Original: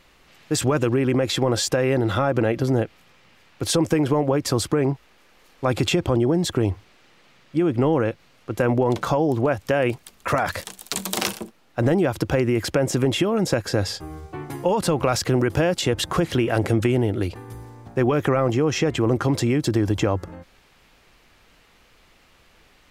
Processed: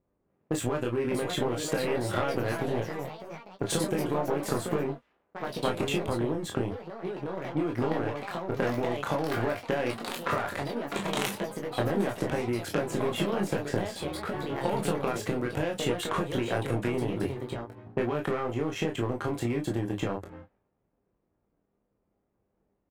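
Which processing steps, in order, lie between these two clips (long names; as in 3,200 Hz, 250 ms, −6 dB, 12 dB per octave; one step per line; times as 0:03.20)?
high-pass filter 100 Hz 6 dB per octave
low-pass that shuts in the quiet parts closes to 470 Hz, open at −20.5 dBFS
parametric band 5,100 Hz −11 dB 0.6 octaves
downward compressor 5 to 1, threshold −28 dBFS, peak gain reduction 11.5 dB
power curve on the samples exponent 1.4
double-tracking delay 20 ms −9 dB
ambience of single reflections 25 ms −5.5 dB, 35 ms −7 dB
delay with pitch and tempo change per echo 684 ms, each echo +3 semitones, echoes 3, each echo −6 dB
level +3.5 dB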